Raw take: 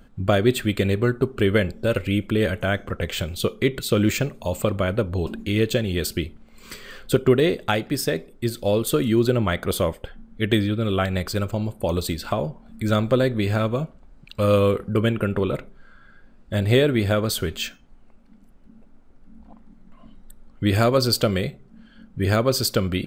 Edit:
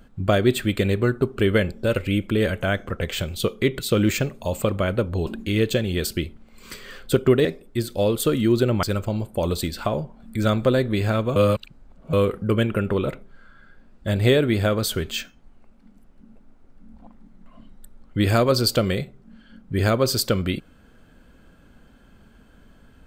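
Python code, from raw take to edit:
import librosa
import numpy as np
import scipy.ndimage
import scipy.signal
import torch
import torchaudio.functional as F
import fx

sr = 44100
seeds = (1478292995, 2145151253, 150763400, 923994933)

y = fx.edit(x, sr, fx.cut(start_s=7.45, length_s=0.67),
    fx.cut(start_s=9.5, length_s=1.79),
    fx.reverse_span(start_s=13.82, length_s=0.77), tone=tone)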